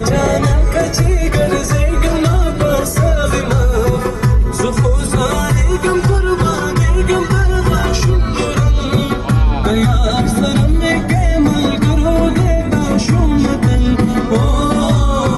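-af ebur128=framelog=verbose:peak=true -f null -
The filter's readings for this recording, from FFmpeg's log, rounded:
Integrated loudness:
  I:         -13.9 LUFS
  Threshold: -23.9 LUFS
Loudness range:
  LRA:         0.9 LU
  Threshold: -34.0 LUFS
  LRA low:   -14.3 LUFS
  LRA high:  -13.5 LUFS
True peak:
  Peak:       -3.8 dBFS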